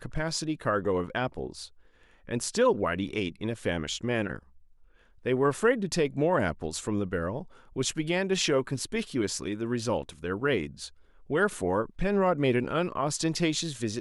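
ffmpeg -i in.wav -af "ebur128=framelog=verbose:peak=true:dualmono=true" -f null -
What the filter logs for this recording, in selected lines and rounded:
Integrated loudness:
  I:         -25.9 LUFS
  Threshold: -36.4 LUFS
Loudness range:
  LRA:         2.2 LU
  Threshold: -46.5 LUFS
  LRA low:   -27.6 LUFS
  LRA high:  -25.3 LUFS
True peak:
  Peak:      -12.5 dBFS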